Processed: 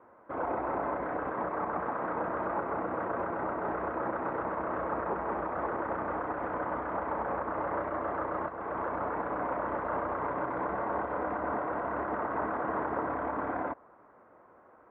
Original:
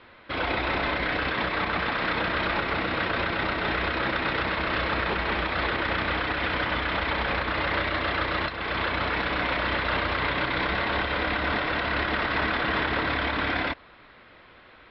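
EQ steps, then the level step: HPF 430 Hz 6 dB/oct; LPF 1100 Hz 24 dB/oct; 0.0 dB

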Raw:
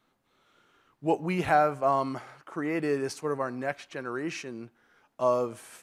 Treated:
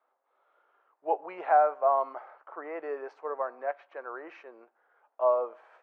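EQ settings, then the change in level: HPF 560 Hz 24 dB/oct; LPF 1000 Hz 12 dB/oct; air absorption 70 m; +3.5 dB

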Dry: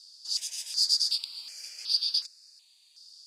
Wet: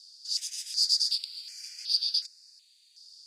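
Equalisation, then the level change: rippled Chebyshev high-pass 1400 Hz, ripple 3 dB; 0.0 dB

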